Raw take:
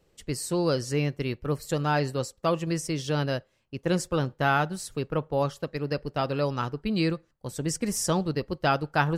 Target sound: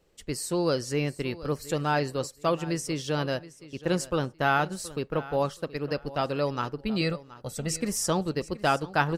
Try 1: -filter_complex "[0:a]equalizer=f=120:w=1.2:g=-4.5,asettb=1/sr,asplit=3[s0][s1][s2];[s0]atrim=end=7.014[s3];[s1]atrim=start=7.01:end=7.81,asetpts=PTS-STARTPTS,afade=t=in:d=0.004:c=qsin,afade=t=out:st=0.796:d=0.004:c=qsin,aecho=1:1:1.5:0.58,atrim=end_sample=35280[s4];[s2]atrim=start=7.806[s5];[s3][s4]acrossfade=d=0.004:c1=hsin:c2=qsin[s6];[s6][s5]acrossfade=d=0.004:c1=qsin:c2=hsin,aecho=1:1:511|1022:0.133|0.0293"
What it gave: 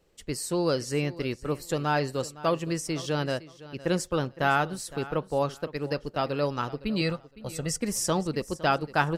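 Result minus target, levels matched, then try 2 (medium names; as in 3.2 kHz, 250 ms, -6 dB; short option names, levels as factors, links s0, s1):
echo 213 ms early
-filter_complex "[0:a]equalizer=f=120:w=1.2:g=-4.5,asettb=1/sr,asplit=3[s0][s1][s2];[s0]atrim=end=7.014[s3];[s1]atrim=start=7.01:end=7.81,asetpts=PTS-STARTPTS,afade=t=in:d=0.004:c=qsin,afade=t=out:st=0.796:d=0.004:c=qsin,aecho=1:1:1.5:0.58,atrim=end_sample=35280[s4];[s2]atrim=start=7.806[s5];[s3][s4]acrossfade=d=0.004:c1=hsin:c2=qsin[s6];[s6][s5]acrossfade=d=0.004:c1=qsin:c2=hsin,aecho=1:1:724|1448:0.133|0.0293"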